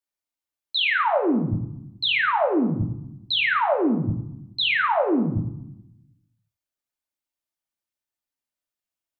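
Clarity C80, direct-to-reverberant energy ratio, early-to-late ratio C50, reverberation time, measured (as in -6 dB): 10.5 dB, 1.0 dB, 8.0 dB, 0.85 s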